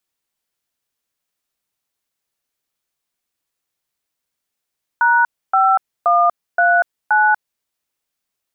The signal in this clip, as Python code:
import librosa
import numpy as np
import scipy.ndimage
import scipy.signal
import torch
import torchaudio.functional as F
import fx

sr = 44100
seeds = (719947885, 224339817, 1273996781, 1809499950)

y = fx.dtmf(sr, digits='#5139', tone_ms=240, gap_ms=284, level_db=-13.0)